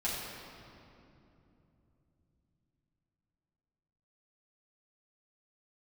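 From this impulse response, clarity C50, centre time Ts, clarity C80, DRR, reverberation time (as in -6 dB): -1.0 dB, 130 ms, 1.0 dB, -8.0 dB, 2.9 s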